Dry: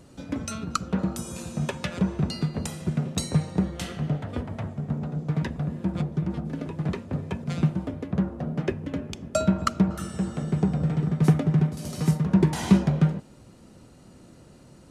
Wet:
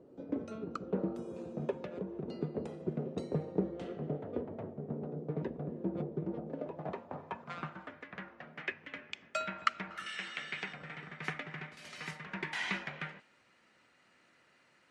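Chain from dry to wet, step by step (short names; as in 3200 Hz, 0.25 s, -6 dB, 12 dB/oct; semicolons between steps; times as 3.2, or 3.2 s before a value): band-pass sweep 420 Hz -> 2000 Hz, 6.22–8.22; dynamic EQ 2900 Hz, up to +4 dB, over -59 dBFS, Q 0.76; 1.73–2.28 compressor 2.5:1, threshold -41 dBFS, peak gain reduction 8.5 dB; 10.06–10.73 weighting filter D; gain +2 dB; MP3 56 kbps 48000 Hz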